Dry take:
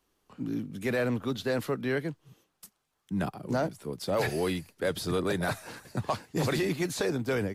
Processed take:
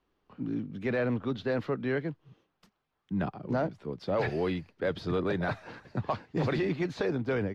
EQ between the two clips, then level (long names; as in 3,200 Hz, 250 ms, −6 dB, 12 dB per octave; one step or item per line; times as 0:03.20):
high-frequency loss of the air 240 metres
0.0 dB